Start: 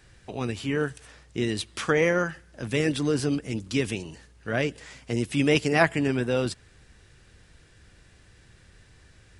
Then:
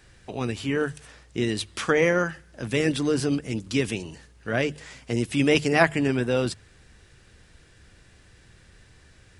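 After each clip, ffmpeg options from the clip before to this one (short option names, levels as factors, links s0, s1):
-af "bandreject=f=50:t=h:w=6,bandreject=f=100:t=h:w=6,bandreject=f=150:t=h:w=6,volume=1.19"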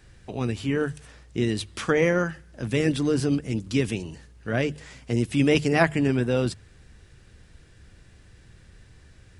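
-af "lowshelf=f=310:g=6.5,volume=0.75"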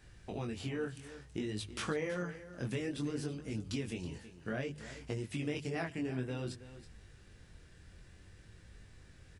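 -af "acompressor=threshold=0.0355:ratio=6,flanger=delay=19:depth=5:speed=0.58,aecho=1:1:325:0.2,volume=0.794"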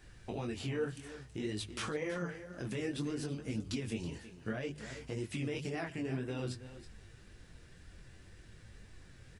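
-af "alimiter=level_in=1.88:limit=0.0631:level=0:latency=1:release=70,volume=0.531,flanger=delay=2.7:depth=6.3:regen=52:speed=1.9:shape=sinusoidal,volume=2"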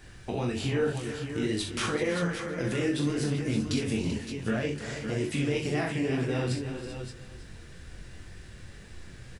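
-af "aecho=1:1:41|63|277|387|562|576:0.473|0.316|0.119|0.251|0.237|0.335,volume=2.37"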